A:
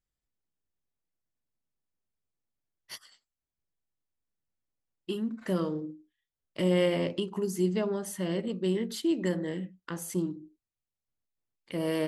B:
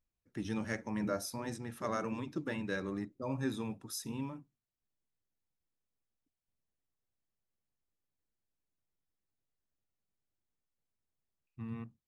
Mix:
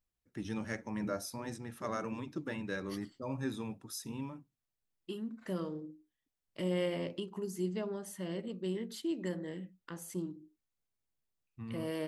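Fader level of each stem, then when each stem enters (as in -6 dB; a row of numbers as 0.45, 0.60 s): -8.0, -1.5 dB; 0.00, 0.00 s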